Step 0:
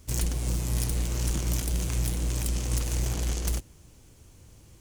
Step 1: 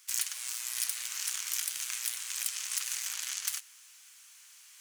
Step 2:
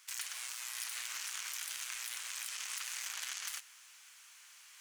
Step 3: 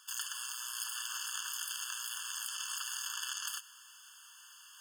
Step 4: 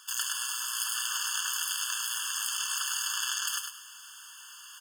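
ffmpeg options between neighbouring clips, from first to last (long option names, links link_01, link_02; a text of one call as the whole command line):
ffmpeg -i in.wav -af "highpass=frequency=1400:width=0.5412,highpass=frequency=1400:width=1.3066,areverse,acompressor=mode=upward:threshold=-51dB:ratio=2.5,areverse,volume=2.5dB" out.wav
ffmpeg -i in.wav -af "highshelf=frequency=3600:gain=-10,alimiter=level_in=7.5dB:limit=-24dB:level=0:latency=1:release=31,volume=-7.5dB,volume=4.5dB" out.wav
ffmpeg -i in.wav -af "afftfilt=real='re*eq(mod(floor(b*sr/1024/890),2),1)':imag='im*eq(mod(floor(b*sr/1024/890),2),1)':win_size=1024:overlap=0.75,volume=5dB" out.wav
ffmpeg -i in.wav -af "aecho=1:1:103|206|309:0.562|0.141|0.0351,volume=6.5dB" out.wav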